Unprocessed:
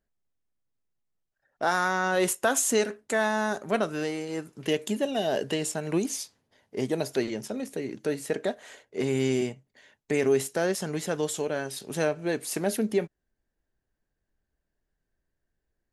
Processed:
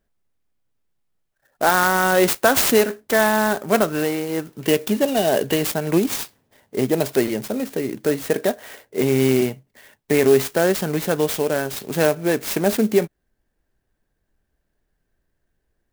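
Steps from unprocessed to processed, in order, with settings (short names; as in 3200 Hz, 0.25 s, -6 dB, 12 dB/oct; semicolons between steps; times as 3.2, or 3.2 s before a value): clock jitter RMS 0.044 ms; gain +8.5 dB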